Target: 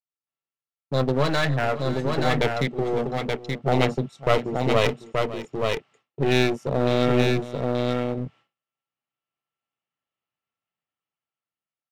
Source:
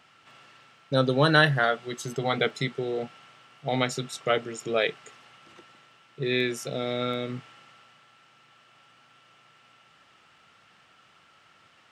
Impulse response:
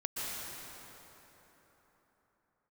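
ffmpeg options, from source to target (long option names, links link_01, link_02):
-af "afwtdn=0.0141,agate=range=-33dB:threshold=-51dB:ratio=3:detection=peak,acontrast=56,equalizer=frequency=1500:width=3.4:gain=-6.5,dynaudnorm=framelen=340:gausssize=9:maxgain=15dB,highshelf=frequency=4900:gain=-11,aeval=exprs='clip(val(0),-1,0.0631)':channel_layout=same,aecho=1:1:552|878:0.168|0.631,volume=-3dB"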